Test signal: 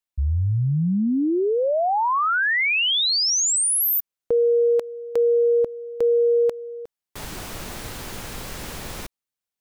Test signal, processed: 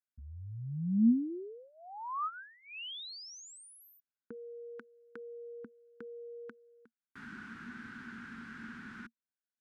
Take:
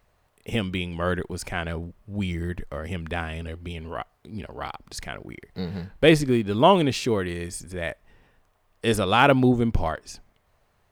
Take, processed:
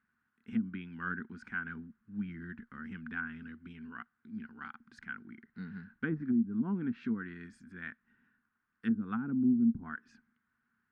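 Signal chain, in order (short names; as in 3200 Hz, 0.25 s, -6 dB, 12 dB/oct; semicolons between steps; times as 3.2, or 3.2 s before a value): double band-pass 590 Hz, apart 2.7 oct; treble ducked by the level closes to 360 Hz, closed at -26.5 dBFS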